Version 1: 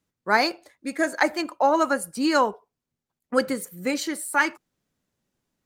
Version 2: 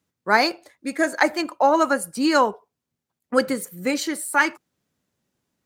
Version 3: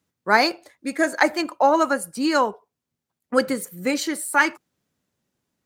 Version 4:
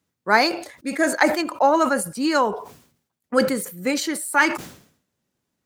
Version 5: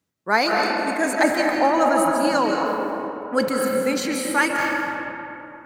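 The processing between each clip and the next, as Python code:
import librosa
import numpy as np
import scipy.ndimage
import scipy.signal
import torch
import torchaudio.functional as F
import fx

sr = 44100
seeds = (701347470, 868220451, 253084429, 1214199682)

y1 = scipy.signal.sosfilt(scipy.signal.butter(2, 57.0, 'highpass', fs=sr, output='sos'), x)
y1 = y1 * librosa.db_to_amplitude(2.5)
y2 = fx.rider(y1, sr, range_db=10, speed_s=2.0)
y3 = fx.sustainer(y2, sr, db_per_s=97.0)
y4 = fx.rev_freeverb(y3, sr, rt60_s=3.2, hf_ratio=0.45, predelay_ms=115, drr_db=-0.5)
y4 = y4 * librosa.db_to_amplitude(-2.5)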